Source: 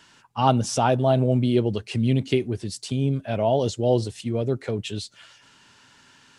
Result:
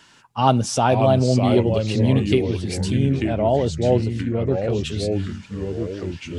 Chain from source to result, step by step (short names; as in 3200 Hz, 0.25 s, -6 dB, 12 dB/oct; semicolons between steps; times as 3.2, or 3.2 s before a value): 3.2–4.7 LPF 2100 Hz 6 dB/oct; echoes that change speed 0.452 s, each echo -3 st, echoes 3, each echo -6 dB; gain +2.5 dB